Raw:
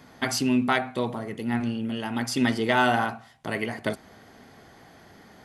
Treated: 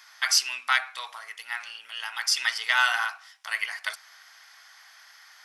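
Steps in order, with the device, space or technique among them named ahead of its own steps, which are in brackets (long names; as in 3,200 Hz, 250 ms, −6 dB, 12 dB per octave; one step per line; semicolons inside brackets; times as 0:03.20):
headphones lying on a table (high-pass filter 1,200 Hz 24 dB per octave; parametric band 5,400 Hz +9.5 dB 0.29 octaves)
level +4 dB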